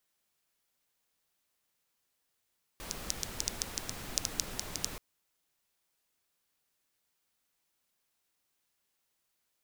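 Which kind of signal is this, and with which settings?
rain-like ticks over hiss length 2.18 s, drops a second 6.4, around 5,800 Hz, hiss −2 dB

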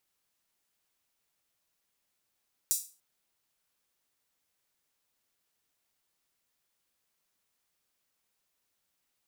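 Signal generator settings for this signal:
open synth hi-hat length 0.29 s, high-pass 6,900 Hz, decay 0.34 s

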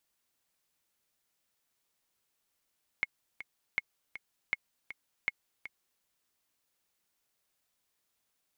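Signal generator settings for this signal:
click track 160 BPM, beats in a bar 2, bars 4, 2,170 Hz, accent 13 dB −16 dBFS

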